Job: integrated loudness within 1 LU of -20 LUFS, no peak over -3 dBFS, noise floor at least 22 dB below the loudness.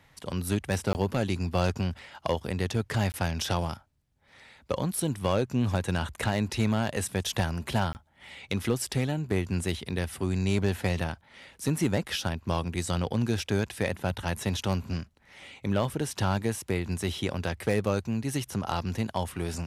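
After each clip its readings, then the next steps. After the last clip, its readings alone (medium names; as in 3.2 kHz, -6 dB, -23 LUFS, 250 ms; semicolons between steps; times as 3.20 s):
clipped samples 0.3%; clipping level -17.0 dBFS; dropouts 3; longest dropout 19 ms; loudness -30.0 LUFS; peak level -17.0 dBFS; loudness target -20.0 LUFS
-> clip repair -17 dBFS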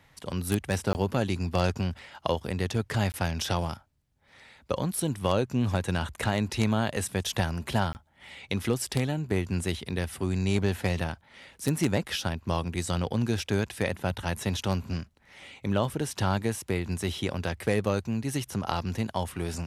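clipped samples 0.0%; dropouts 3; longest dropout 19 ms
-> interpolate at 0.93/3.12/7.93 s, 19 ms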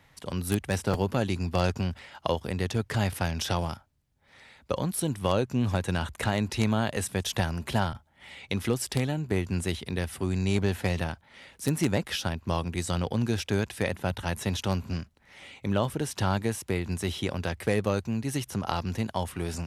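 dropouts 0; loudness -29.5 LUFS; peak level -8.0 dBFS; loudness target -20.0 LUFS
-> trim +9.5 dB; peak limiter -3 dBFS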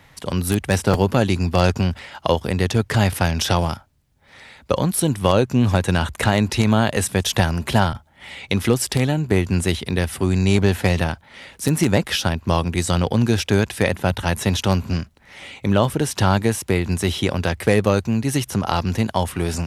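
loudness -20.5 LUFS; peak level -3.0 dBFS; noise floor -52 dBFS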